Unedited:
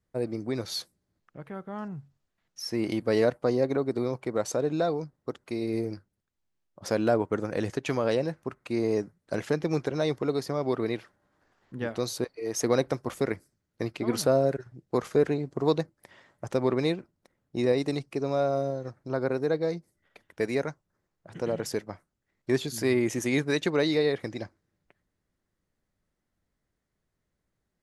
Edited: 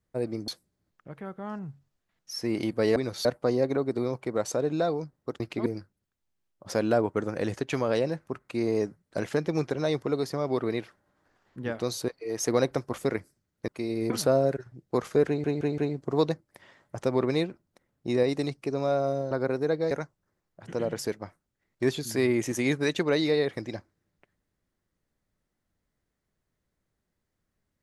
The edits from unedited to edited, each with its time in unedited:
0.48–0.77 s: move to 3.25 s
5.40–5.82 s: swap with 13.84–14.10 s
15.27 s: stutter 0.17 s, 4 plays
18.80–19.12 s: delete
19.72–20.58 s: delete

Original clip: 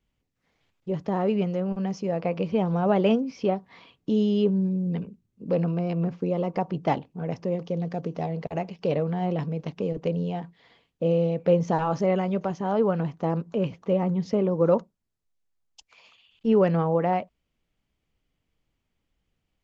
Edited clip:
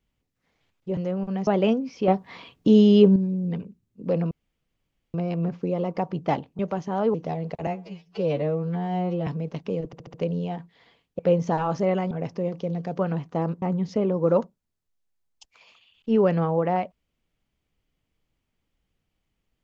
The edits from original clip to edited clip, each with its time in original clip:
0.97–1.46 s: delete
1.96–2.89 s: delete
3.50–4.58 s: gain +7.5 dB
5.73 s: insert room tone 0.83 s
7.18–8.06 s: swap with 12.32–12.87 s
8.59–9.39 s: stretch 2×
9.98 s: stutter 0.07 s, 5 plays
11.03–11.40 s: delete
13.50–13.99 s: delete

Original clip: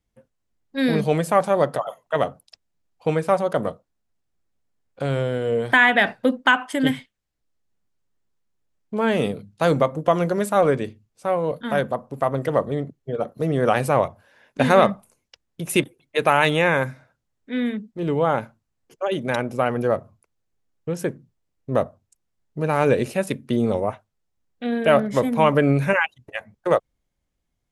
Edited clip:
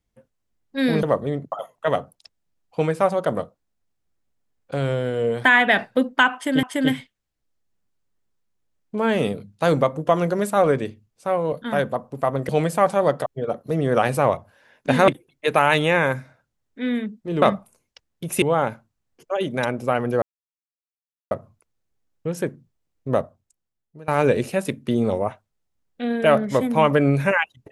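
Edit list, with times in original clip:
1.03–1.80 s: swap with 12.48–12.97 s
6.62–6.91 s: loop, 2 plays
14.79–15.79 s: move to 18.13 s
19.93 s: insert silence 1.09 s
21.75–22.70 s: fade out, to -23 dB

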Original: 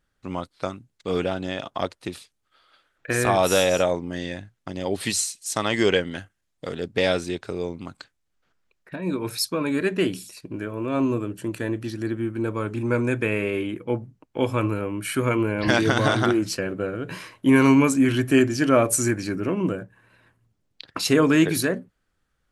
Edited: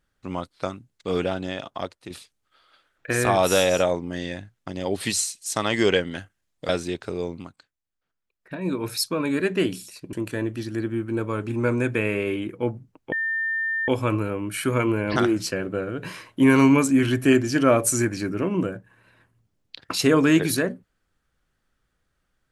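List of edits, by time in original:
1.36–2.10 s: fade out linear, to -8 dB
6.69–7.10 s: delete
7.80–8.95 s: dip -12 dB, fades 0.15 s
10.54–11.40 s: delete
14.39 s: add tone 1.8 kHz -22.5 dBFS 0.76 s
15.67–16.22 s: delete

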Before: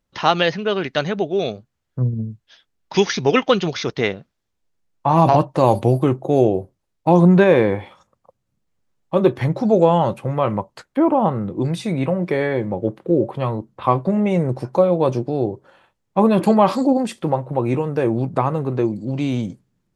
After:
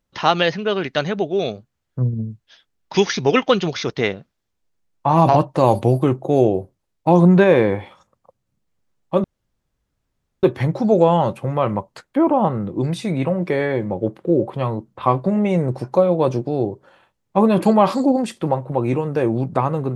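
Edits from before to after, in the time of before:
9.24 s: insert room tone 1.19 s

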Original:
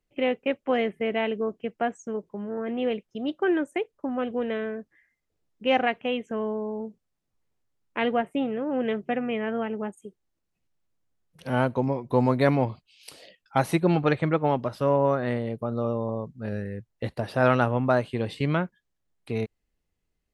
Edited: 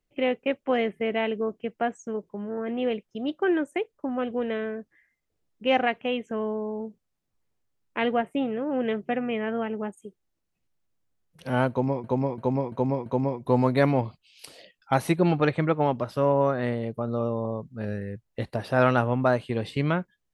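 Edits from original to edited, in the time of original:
11.70–12.04 s: loop, 5 plays

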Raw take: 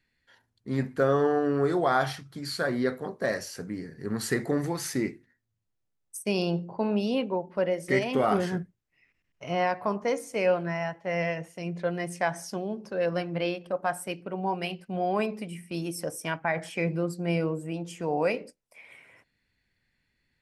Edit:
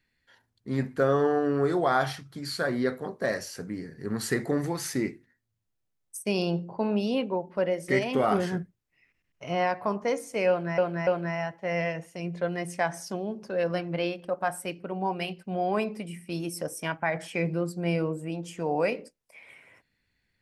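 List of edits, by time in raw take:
10.49–10.78 s: loop, 3 plays

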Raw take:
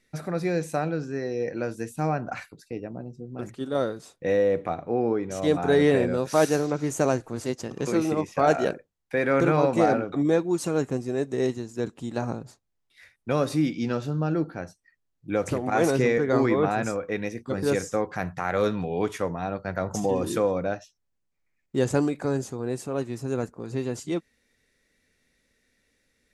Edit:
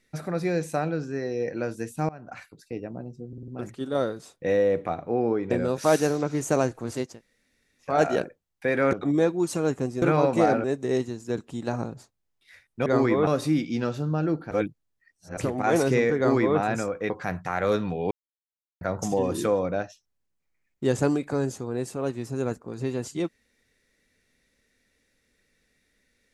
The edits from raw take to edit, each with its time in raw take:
2.09–2.72 s: fade in, from -22.5 dB
3.28 s: stutter 0.05 s, 5 plays
5.31–6.00 s: delete
7.59–8.39 s: room tone, crossfade 0.24 s
9.42–10.04 s: move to 11.13 s
14.59–15.45 s: reverse
16.26–16.67 s: copy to 13.35 s
17.18–18.02 s: delete
19.03–19.73 s: mute

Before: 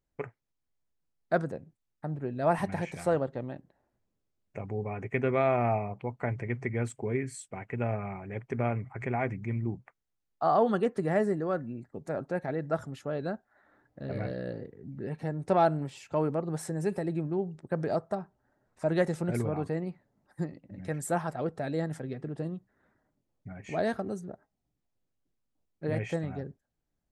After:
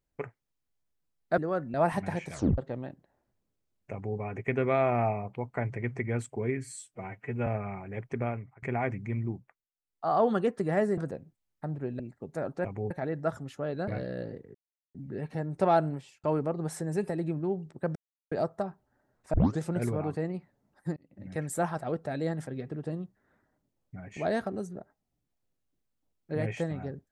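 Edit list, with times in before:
1.38–2.40 s: swap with 11.36–11.72 s
2.99 s: tape stop 0.25 s
4.58–4.84 s: copy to 12.37 s
7.30–7.85 s: stretch 1.5×
8.52–9.01 s: fade out, to -24 dB
9.61–10.61 s: dip -23 dB, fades 0.47 s linear
13.34–14.16 s: delete
14.83 s: insert silence 0.40 s
15.78–16.12 s: fade out
17.84 s: insert silence 0.36 s
18.86 s: tape start 0.26 s
20.49–20.76 s: fade in

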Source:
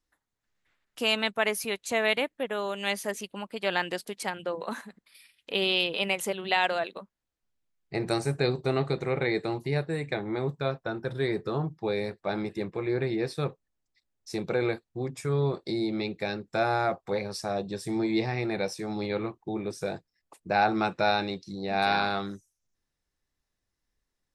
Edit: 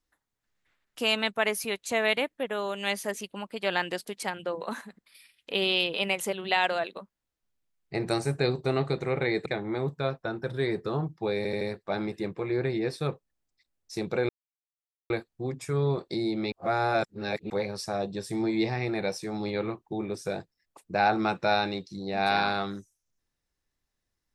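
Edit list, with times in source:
9.46–10.07 s: delete
11.98 s: stutter 0.08 s, 4 plays
14.66 s: insert silence 0.81 s
16.08–17.06 s: reverse

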